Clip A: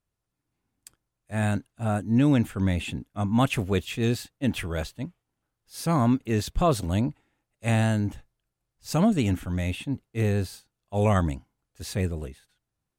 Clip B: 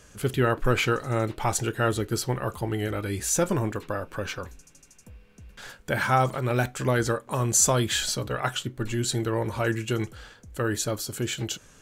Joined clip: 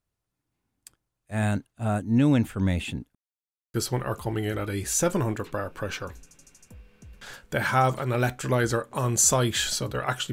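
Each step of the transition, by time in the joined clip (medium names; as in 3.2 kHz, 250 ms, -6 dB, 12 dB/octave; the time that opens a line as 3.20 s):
clip A
3.15–3.74 s: mute
3.74 s: go over to clip B from 2.10 s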